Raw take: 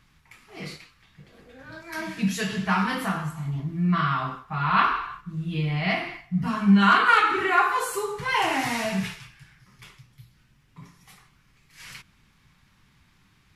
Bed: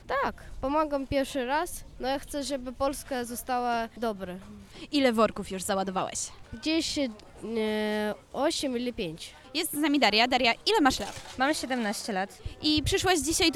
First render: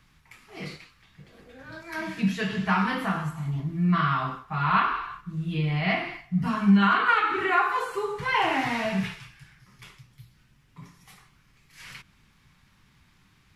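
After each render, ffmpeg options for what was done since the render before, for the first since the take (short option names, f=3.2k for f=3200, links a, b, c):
-filter_complex "[0:a]acrossover=split=260|4000[a][b][c];[c]acompressor=threshold=-52dB:ratio=6[d];[a][b][d]amix=inputs=3:normalize=0,alimiter=limit=-11dB:level=0:latency=1:release=478"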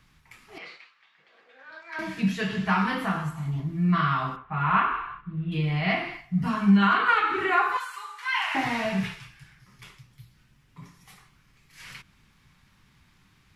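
-filter_complex "[0:a]asettb=1/sr,asplit=3[a][b][c];[a]atrim=end=0.584[d];[b]atrim=start=0.58:end=1.99,asetpts=PTS-STARTPTS,afade=t=in:d=0.004:c=qsin,afade=t=out:st=1.406:d=0.004:c=qsin,highpass=770,lowpass=3.5k[e];[c]atrim=start=1.986[f];[d][e]acrossfade=d=0.004:c1=hsin:c2=qsin[g];[g][f]acrossfade=d=0.004:c1=qsin:c2=hsin,asettb=1/sr,asplit=3[h][i][j];[h]atrim=end=4.364[k];[i]atrim=start=4.36:end=5.52,asetpts=PTS-STARTPTS,afade=t=in:d=0.004:c=qsin,afade=t=out:st=1.156:d=0.004:c=qsin,lowpass=f=2.9k:w=0.5412,lowpass=f=2.9k:w=1.3066[l];[j]atrim=start=5.516[m];[k][l]acrossfade=d=0.004:c1=hsin:c2=qsin[n];[n][m]acrossfade=d=0.004:c1=qsin:c2=hsin,asettb=1/sr,asplit=3[o][p][q];[o]atrim=end=7.774[r];[p]atrim=start=7.77:end=8.55,asetpts=PTS-STARTPTS,afade=t=in:d=0.004:c=qsin,afade=t=out:st=0.776:d=0.004:c=qsin,highpass=f=1.1k:w=0.5412,highpass=f=1.1k:w=1.3066[s];[q]atrim=start=8.546[t];[r][s]acrossfade=d=0.004:c1=hsin:c2=qsin[u];[u][t]acrossfade=d=0.004:c1=qsin:c2=hsin"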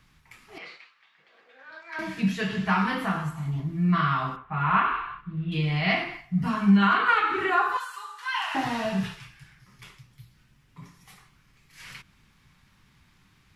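-filter_complex "[0:a]asettb=1/sr,asplit=3[a][b][c];[a]atrim=end=4.854[d];[b]atrim=start=4.85:end=6.04,asetpts=PTS-STARTPTS,afade=t=in:d=0.004:c=qsin,afade=t=out:st=1.186:d=0.004:c=qsin,equalizer=f=4.8k:w=0.72:g=5.5[e];[c]atrim=start=6.036[f];[d][e]acrossfade=d=0.004:c1=hsin:c2=qsin[g];[g][f]acrossfade=d=0.004:c1=qsin:c2=hsin,asettb=1/sr,asplit=3[h][i][j];[h]atrim=end=7.504[k];[i]atrim=start=7.5:end=9.18,asetpts=PTS-STARTPTS,afade=t=in:d=0.004:c=qsin,afade=t=out:st=1.676:d=0.004:c=qsin,equalizer=f=2.2k:t=o:w=0.27:g=-12[l];[j]atrim=start=9.176[m];[k][l]acrossfade=d=0.004:c1=hsin:c2=qsin[n];[n][m]acrossfade=d=0.004:c1=qsin:c2=hsin"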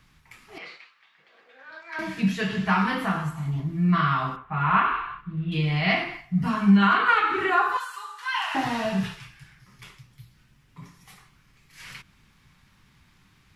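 -af "volume=1.5dB"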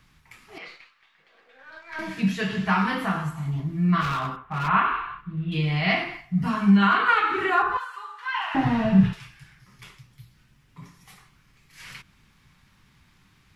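-filter_complex "[0:a]asettb=1/sr,asplit=3[a][b][c];[a]atrim=end=0.684[d];[b]atrim=start=0.68:end=2.11,asetpts=PTS-STARTPTS,afade=t=in:d=0.004:c=qsin,afade=t=out:st=1.426:d=0.004:c=qsin,aeval=exprs='if(lt(val(0),0),0.708*val(0),val(0))':c=same[e];[c]atrim=start=2.106[f];[d][e]acrossfade=d=0.004:c1=hsin:c2=qsin[g];[g][f]acrossfade=d=0.004:c1=qsin:c2=hsin,asplit=3[h][i][j];[h]afade=t=out:st=4:d=0.02[k];[i]asoftclip=type=hard:threshold=-23.5dB,afade=t=in:st=4:d=0.02,afade=t=out:st=4.67:d=0.02[l];[j]afade=t=in:st=4.67:d=0.02[m];[k][l][m]amix=inputs=3:normalize=0,asettb=1/sr,asplit=3[n][o][p];[n]atrim=end=7.624[q];[o]atrim=start=7.62:end=9.13,asetpts=PTS-STARTPTS,afade=t=in:d=0.004:c=qsin,afade=t=out:st=1.506:d=0.004:c=qsin,bass=f=250:g=14,treble=f=4k:g=-14[r];[p]atrim=start=9.126[s];[q][r]acrossfade=d=0.004:c1=hsin:c2=qsin[t];[t][s]acrossfade=d=0.004:c1=qsin:c2=hsin"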